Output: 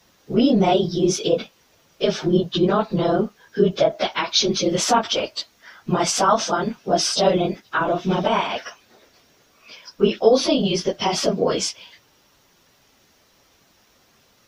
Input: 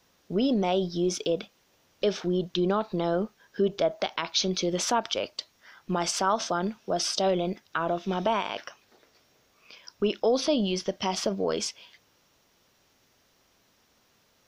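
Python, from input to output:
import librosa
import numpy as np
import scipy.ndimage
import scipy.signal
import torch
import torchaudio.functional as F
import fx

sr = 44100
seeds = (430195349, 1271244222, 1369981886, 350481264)

y = fx.phase_scramble(x, sr, seeds[0], window_ms=50)
y = y * 10.0 ** (7.5 / 20.0)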